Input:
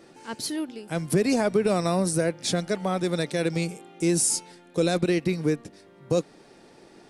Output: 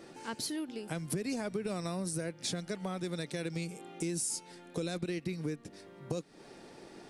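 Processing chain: dynamic EQ 680 Hz, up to -5 dB, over -34 dBFS, Q 0.72; compressor 3:1, threshold -36 dBFS, peak gain reduction 13 dB

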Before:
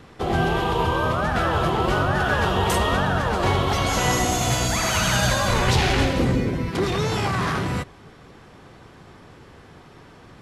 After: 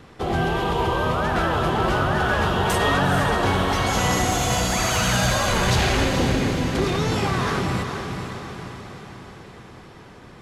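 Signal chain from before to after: 2.79–3.33 comb 7 ms, depth 97%; soft clip -12.5 dBFS, distortion -21 dB; diffused feedback echo 0.453 s, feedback 56%, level -6.5 dB

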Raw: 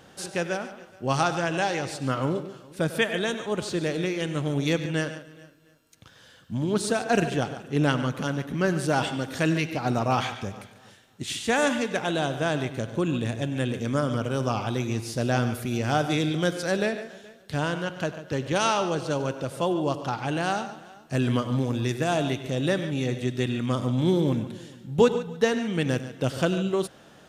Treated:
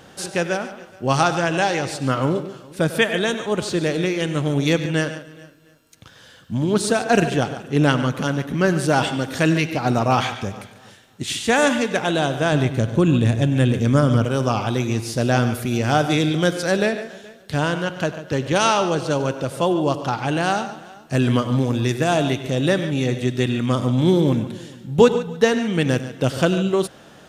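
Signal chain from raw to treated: 12.52–14.25 low shelf 180 Hz +9.5 dB; gain +6 dB

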